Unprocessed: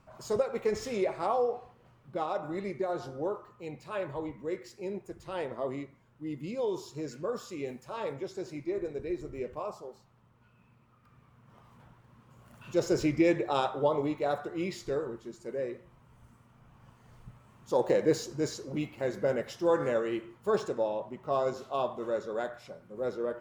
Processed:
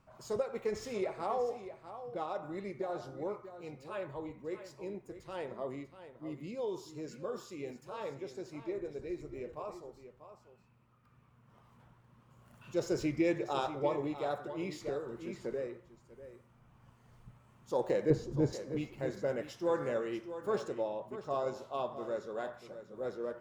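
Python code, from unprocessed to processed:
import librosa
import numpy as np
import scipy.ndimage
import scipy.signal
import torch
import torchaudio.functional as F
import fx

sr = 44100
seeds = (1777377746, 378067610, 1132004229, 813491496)

y = fx.tilt_eq(x, sr, slope=-4.0, at=(18.1, 18.53))
y = y + 10.0 ** (-12.0 / 20.0) * np.pad(y, (int(641 * sr / 1000.0), 0))[:len(y)]
y = fx.band_squash(y, sr, depth_pct=100, at=(14.81, 15.67))
y = y * 10.0 ** (-5.5 / 20.0)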